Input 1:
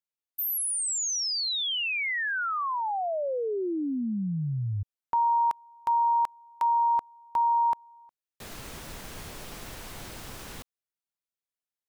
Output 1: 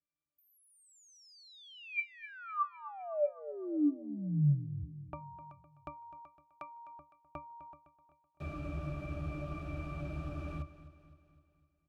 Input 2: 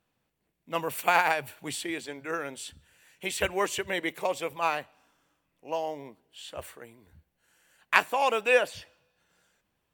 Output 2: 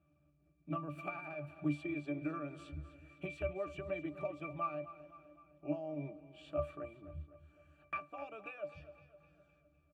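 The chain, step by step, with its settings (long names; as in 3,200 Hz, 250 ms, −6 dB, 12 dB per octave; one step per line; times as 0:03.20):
downward compressor 10 to 1, threshold −38 dBFS
resonances in every octave D, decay 0.17 s
on a send: repeating echo 255 ms, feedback 52%, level −15 dB
on the sum: level +15.5 dB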